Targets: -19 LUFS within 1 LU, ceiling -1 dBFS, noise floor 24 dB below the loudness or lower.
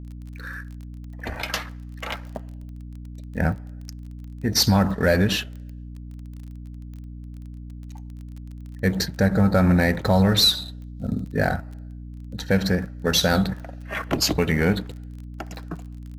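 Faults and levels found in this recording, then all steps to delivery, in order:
ticks 23/s; hum 60 Hz; harmonics up to 300 Hz; hum level -35 dBFS; loudness -22.0 LUFS; peak -7.0 dBFS; loudness target -19.0 LUFS
-> de-click; notches 60/120/180/240/300 Hz; gain +3 dB

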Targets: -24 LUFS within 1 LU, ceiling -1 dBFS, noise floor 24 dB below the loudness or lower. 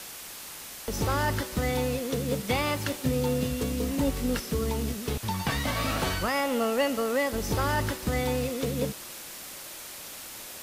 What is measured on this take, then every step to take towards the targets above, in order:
noise floor -42 dBFS; noise floor target -54 dBFS; loudness -29.5 LUFS; peak -15.5 dBFS; loudness target -24.0 LUFS
-> noise print and reduce 12 dB; gain +5.5 dB

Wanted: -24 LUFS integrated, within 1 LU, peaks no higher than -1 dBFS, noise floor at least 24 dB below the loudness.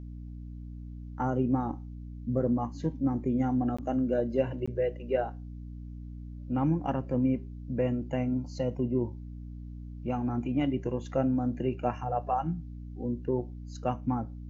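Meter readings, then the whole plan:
dropouts 2; longest dropout 15 ms; hum 60 Hz; harmonics up to 300 Hz; hum level -39 dBFS; loudness -31.0 LUFS; peak -13.5 dBFS; loudness target -24.0 LUFS
-> interpolate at 3.77/4.66, 15 ms; de-hum 60 Hz, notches 5; gain +7 dB

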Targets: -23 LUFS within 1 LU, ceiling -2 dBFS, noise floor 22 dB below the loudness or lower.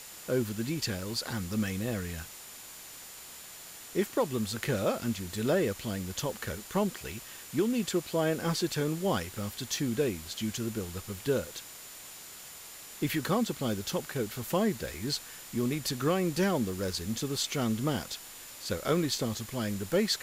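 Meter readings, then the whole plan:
steady tone 7100 Hz; tone level -53 dBFS; noise floor -47 dBFS; noise floor target -54 dBFS; loudness -32.0 LUFS; peak -16.5 dBFS; loudness target -23.0 LUFS
-> notch 7100 Hz, Q 30; denoiser 7 dB, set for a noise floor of -47 dBFS; gain +9 dB

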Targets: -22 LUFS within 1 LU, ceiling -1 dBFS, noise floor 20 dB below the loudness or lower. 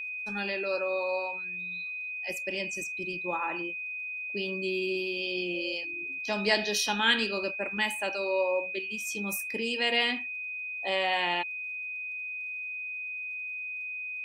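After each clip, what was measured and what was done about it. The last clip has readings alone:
ticks 22/s; steady tone 2500 Hz; tone level -34 dBFS; loudness -30.5 LUFS; peak -10.5 dBFS; loudness target -22.0 LUFS
-> de-click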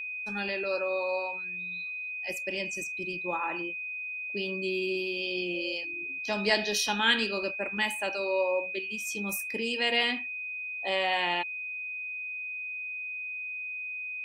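ticks 0/s; steady tone 2500 Hz; tone level -34 dBFS
-> notch 2500 Hz, Q 30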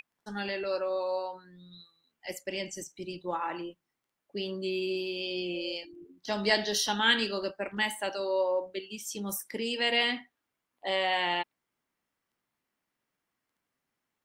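steady tone none; loudness -31.0 LUFS; peak -10.5 dBFS; loudness target -22.0 LUFS
-> gain +9 dB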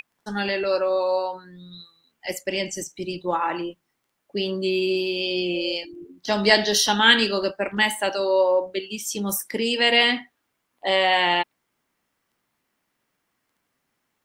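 loudness -22.0 LUFS; peak -1.5 dBFS; noise floor -76 dBFS

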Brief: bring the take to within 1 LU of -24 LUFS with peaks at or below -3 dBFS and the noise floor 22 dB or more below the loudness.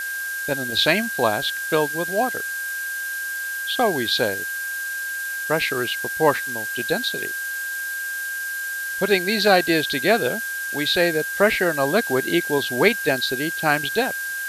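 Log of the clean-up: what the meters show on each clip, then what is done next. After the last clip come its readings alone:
steady tone 1600 Hz; tone level -26 dBFS; noise floor -28 dBFS; noise floor target -44 dBFS; loudness -22.0 LUFS; peak -2.5 dBFS; loudness target -24.0 LUFS
-> notch 1600 Hz, Q 30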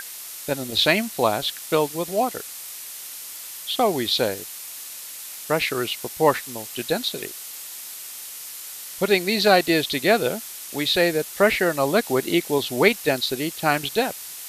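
steady tone none; noise floor -37 dBFS; noise floor target -44 dBFS
-> noise print and reduce 7 dB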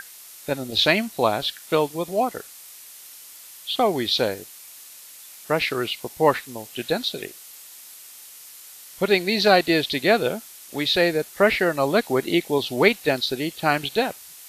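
noise floor -44 dBFS; loudness -22.0 LUFS; peak -3.0 dBFS; loudness target -24.0 LUFS
-> gain -2 dB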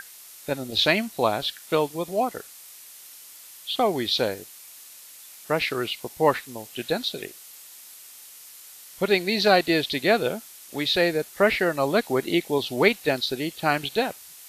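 loudness -24.0 LUFS; peak -5.0 dBFS; noise floor -46 dBFS

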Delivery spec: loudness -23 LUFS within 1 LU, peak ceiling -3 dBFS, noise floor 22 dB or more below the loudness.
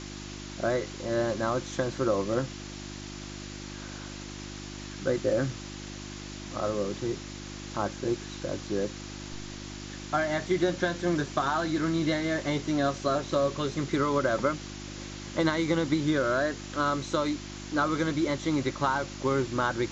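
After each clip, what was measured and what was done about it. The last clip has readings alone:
hum 50 Hz; harmonics up to 350 Hz; hum level -39 dBFS; noise floor -41 dBFS; noise floor target -52 dBFS; loudness -29.5 LUFS; peak -11.5 dBFS; loudness target -23.0 LUFS
-> de-hum 50 Hz, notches 7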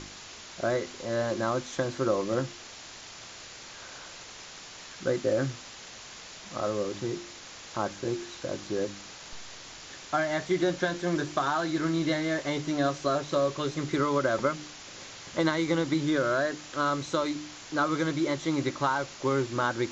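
hum none; noise floor -46 dBFS; noise floor target -52 dBFS
-> denoiser 6 dB, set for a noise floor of -46 dBFS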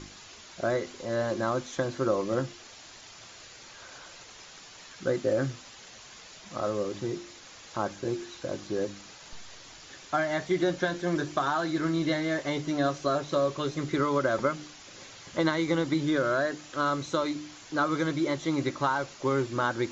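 noise floor -49 dBFS; noise floor target -52 dBFS
-> denoiser 6 dB, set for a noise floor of -49 dBFS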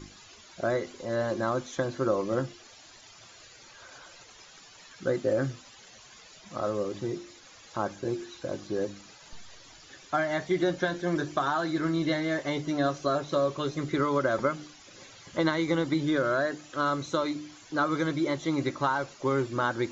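noise floor -53 dBFS; loudness -29.5 LUFS; peak -12.0 dBFS; loudness target -23.0 LUFS
-> gain +6.5 dB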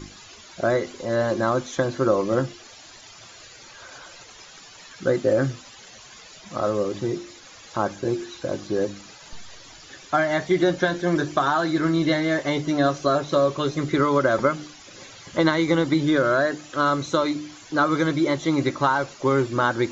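loudness -23.0 LUFS; peak -5.5 dBFS; noise floor -46 dBFS

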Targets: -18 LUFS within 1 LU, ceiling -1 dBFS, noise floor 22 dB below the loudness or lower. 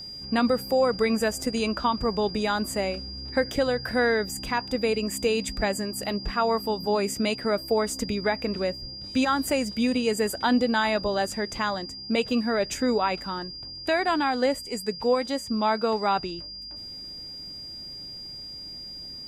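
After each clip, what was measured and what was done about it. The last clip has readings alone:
ticks 37/s; steady tone 4800 Hz; tone level -37 dBFS; loudness -26.0 LUFS; peak -12.0 dBFS; loudness target -18.0 LUFS
-> de-click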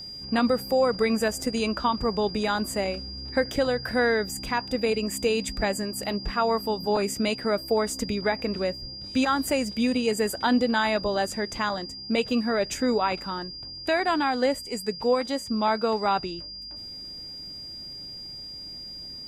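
ticks 0.10/s; steady tone 4800 Hz; tone level -37 dBFS
-> notch 4800 Hz, Q 30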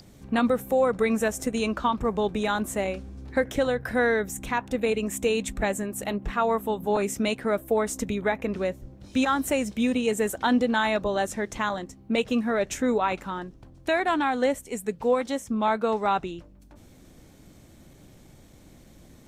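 steady tone none; loudness -26.5 LUFS; peak -12.5 dBFS; loudness target -18.0 LUFS
-> gain +8.5 dB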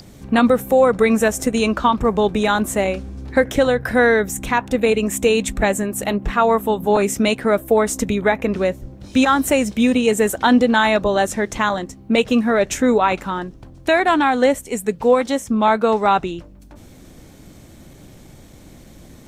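loudness -18.0 LUFS; peak -4.0 dBFS; noise floor -43 dBFS

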